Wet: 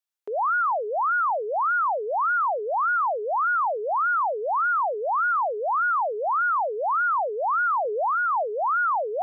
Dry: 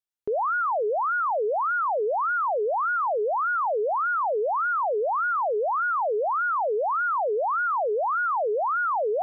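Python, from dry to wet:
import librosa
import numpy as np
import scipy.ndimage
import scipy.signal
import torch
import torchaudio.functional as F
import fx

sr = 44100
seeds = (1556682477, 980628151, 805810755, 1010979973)

y = scipy.signal.sosfilt(scipy.signal.butter(2, 640.0, 'highpass', fs=sr, output='sos'), x)
y = fx.tilt_eq(y, sr, slope=-2.0, at=(7.85, 8.43))
y = F.gain(torch.from_numpy(y), 2.5).numpy()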